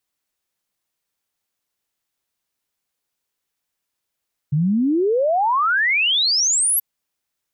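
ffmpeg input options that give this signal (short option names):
-f lavfi -i "aevalsrc='0.178*clip(min(t,2.28-t)/0.01,0,1)*sin(2*PI*140*2.28/log(12000/140)*(exp(log(12000/140)*t/2.28)-1))':d=2.28:s=44100"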